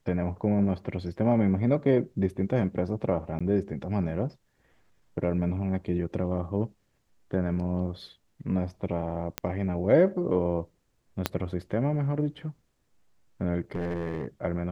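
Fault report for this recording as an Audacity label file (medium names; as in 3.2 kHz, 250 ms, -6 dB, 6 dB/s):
3.390000	3.410000	dropout
9.380000	9.380000	pop -11 dBFS
11.260000	11.260000	pop -9 dBFS
13.750000	14.260000	clipped -26 dBFS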